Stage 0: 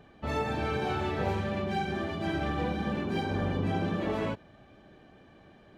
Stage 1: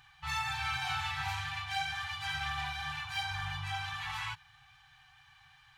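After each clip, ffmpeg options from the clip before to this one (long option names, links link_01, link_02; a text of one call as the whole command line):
ffmpeg -i in.wav -af "afftfilt=real='re*(1-between(b*sr/4096,160,740))':imag='im*(1-between(b*sr/4096,160,740))':win_size=4096:overlap=0.75,tiltshelf=frequency=1300:gain=-8" out.wav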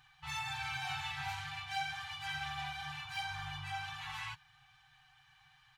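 ffmpeg -i in.wav -af "aecho=1:1:6.5:0.48,volume=-5dB" out.wav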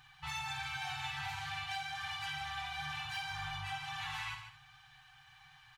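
ffmpeg -i in.wav -af "acompressor=threshold=-42dB:ratio=6,aecho=1:1:58|148|223:0.398|0.355|0.106,volume=4dB" out.wav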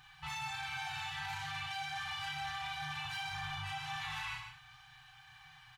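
ffmpeg -i in.wav -filter_complex "[0:a]alimiter=level_in=11dB:limit=-24dB:level=0:latency=1:release=12,volume=-11dB,asplit=2[link_01][link_02];[link_02]adelay=33,volume=-4.5dB[link_03];[link_01][link_03]amix=inputs=2:normalize=0,volume=1dB" out.wav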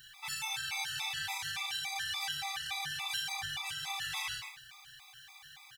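ffmpeg -i in.wav -filter_complex "[0:a]asplit=2[link_01][link_02];[link_02]adelay=37,volume=-13dB[link_03];[link_01][link_03]amix=inputs=2:normalize=0,crystalizer=i=7.5:c=0,afftfilt=real='re*gt(sin(2*PI*3.5*pts/sr)*(1-2*mod(floor(b*sr/1024/660),2)),0)':imag='im*gt(sin(2*PI*3.5*pts/sr)*(1-2*mod(floor(b*sr/1024/660),2)),0)':win_size=1024:overlap=0.75,volume=-2.5dB" out.wav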